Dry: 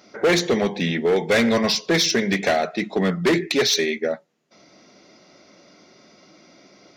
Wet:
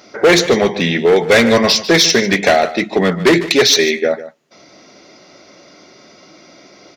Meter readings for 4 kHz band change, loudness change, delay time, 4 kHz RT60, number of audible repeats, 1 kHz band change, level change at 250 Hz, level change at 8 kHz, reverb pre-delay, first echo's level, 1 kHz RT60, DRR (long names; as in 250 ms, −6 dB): +8.5 dB, +8.0 dB, 148 ms, no reverb audible, 1, +8.5 dB, +6.0 dB, +8.5 dB, no reverb audible, −15.0 dB, no reverb audible, no reverb audible